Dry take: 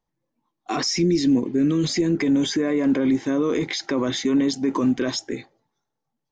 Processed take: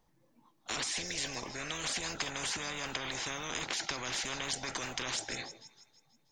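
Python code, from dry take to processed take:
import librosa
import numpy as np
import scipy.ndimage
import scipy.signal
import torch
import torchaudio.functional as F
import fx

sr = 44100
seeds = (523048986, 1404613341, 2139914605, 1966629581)

p1 = x + fx.echo_wet_highpass(x, sr, ms=161, feedback_pct=53, hz=3200.0, wet_db=-23.5, dry=0)
p2 = fx.spectral_comp(p1, sr, ratio=10.0)
y = p2 * 10.0 ** (-5.0 / 20.0)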